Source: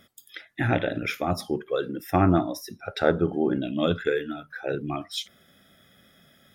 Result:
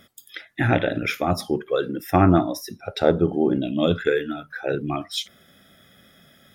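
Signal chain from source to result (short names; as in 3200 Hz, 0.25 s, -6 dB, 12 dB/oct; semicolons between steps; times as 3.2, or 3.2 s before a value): 2.81–3.93 bell 1600 Hz -8.5 dB 0.77 oct; gain +4 dB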